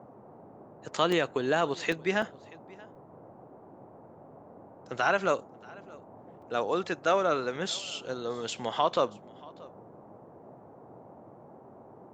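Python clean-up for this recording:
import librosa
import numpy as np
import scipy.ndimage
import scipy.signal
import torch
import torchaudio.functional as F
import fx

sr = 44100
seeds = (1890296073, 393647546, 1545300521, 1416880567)

y = fx.fix_interpolate(x, sr, at_s=(1.12, 1.92, 2.22, 2.95, 6.42), length_ms=3.6)
y = fx.noise_reduce(y, sr, print_start_s=3.01, print_end_s=3.51, reduce_db=23.0)
y = fx.fix_echo_inverse(y, sr, delay_ms=631, level_db=-23.5)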